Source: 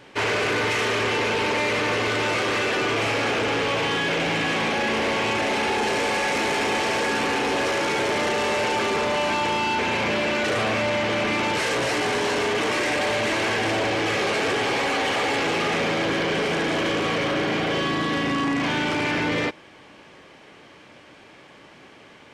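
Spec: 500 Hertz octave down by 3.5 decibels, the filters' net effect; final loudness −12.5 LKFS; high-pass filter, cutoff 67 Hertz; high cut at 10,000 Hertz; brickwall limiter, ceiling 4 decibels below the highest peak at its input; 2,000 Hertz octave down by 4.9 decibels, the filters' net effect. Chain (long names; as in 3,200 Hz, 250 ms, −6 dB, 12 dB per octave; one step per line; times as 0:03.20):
high-pass filter 67 Hz
low-pass filter 10,000 Hz
parametric band 500 Hz −4 dB
parametric band 2,000 Hz −6 dB
level +14.5 dB
brickwall limiter −7 dBFS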